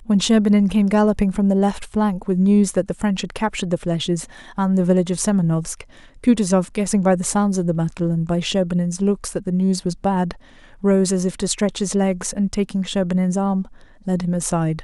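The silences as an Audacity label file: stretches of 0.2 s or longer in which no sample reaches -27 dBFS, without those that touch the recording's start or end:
4.240000	4.580000	silence
5.810000	6.240000	silence
10.320000	10.840000	silence
13.620000	14.070000	silence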